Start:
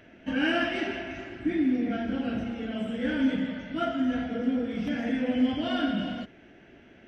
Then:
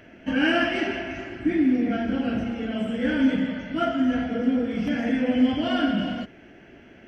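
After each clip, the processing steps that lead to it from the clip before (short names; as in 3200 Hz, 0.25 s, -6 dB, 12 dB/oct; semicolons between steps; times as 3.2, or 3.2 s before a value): notch 3700 Hz, Q 6.8; gain +4.5 dB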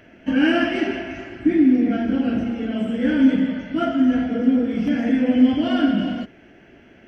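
dynamic EQ 290 Hz, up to +6 dB, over -35 dBFS, Q 1.2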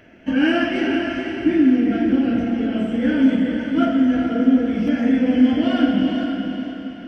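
diffused feedback echo 0.478 s, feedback 41%, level -5.5 dB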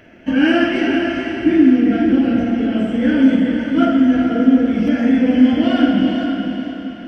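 reverb RT60 0.40 s, pre-delay 43 ms, DRR 9.5 dB; gain +3 dB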